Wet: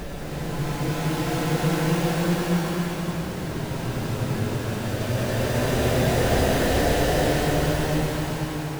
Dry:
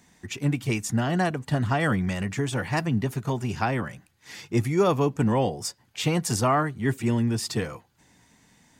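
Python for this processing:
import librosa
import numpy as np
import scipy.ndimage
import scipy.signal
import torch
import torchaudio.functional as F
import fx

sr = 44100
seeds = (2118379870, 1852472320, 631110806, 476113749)

y = fx.tracing_dist(x, sr, depth_ms=0.28)
y = fx.sample_hold(y, sr, seeds[0], rate_hz=1200.0, jitter_pct=20)
y = fx.paulstretch(y, sr, seeds[1], factor=12.0, window_s=0.25, from_s=5.97)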